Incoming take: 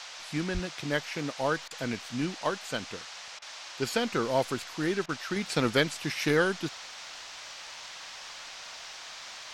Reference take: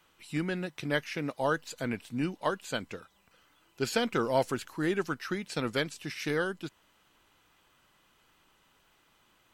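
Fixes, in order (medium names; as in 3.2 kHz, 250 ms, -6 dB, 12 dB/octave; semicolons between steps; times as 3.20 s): 0.53–0.65 s: high-pass 140 Hz 24 dB/octave; interpolate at 1.68/3.39/5.06 s, 28 ms; noise print and reduce 23 dB; trim 0 dB, from 5.36 s -5.5 dB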